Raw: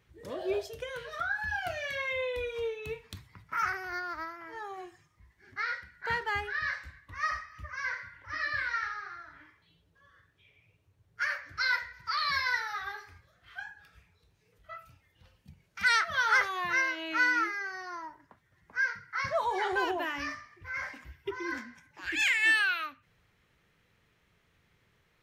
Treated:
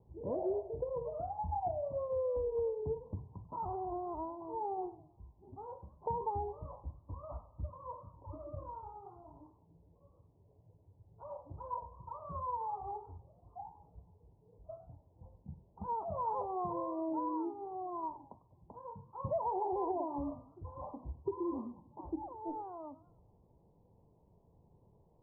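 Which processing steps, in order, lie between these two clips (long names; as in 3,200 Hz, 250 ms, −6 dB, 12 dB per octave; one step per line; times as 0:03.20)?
Butterworth low-pass 990 Hz 96 dB per octave
downward compressor 6 to 1, threshold −38 dBFS, peak gain reduction 11.5 dB
feedback echo with a swinging delay time 102 ms, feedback 41%, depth 203 cents, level −18 dB
level +5.5 dB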